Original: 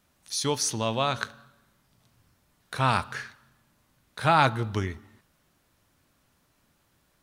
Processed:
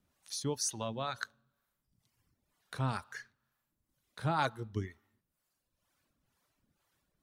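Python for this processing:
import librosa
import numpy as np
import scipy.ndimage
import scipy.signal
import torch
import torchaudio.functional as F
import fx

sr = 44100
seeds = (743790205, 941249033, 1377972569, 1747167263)

y = fx.dereverb_blind(x, sr, rt60_s=1.3)
y = fx.dynamic_eq(y, sr, hz=2400.0, q=2.0, threshold_db=-44.0, ratio=4.0, max_db=-6)
y = fx.harmonic_tremolo(y, sr, hz=2.1, depth_pct=70, crossover_hz=450.0)
y = y * librosa.db_to_amplitude(-4.5)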